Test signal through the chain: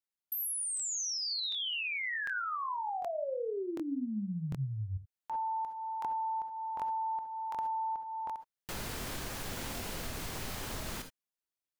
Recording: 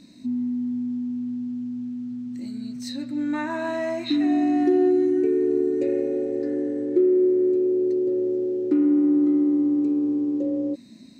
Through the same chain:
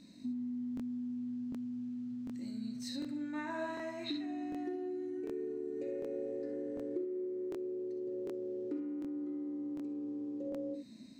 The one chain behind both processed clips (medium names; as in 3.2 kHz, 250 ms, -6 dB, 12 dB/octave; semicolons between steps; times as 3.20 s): compression 6:1, threshold -28 dBFS; gated-style reverb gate 90 ms rising, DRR 7 dB; crackling interface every 0.75 s, samples 1024, repeat, from 0.75 s; trim -8 dB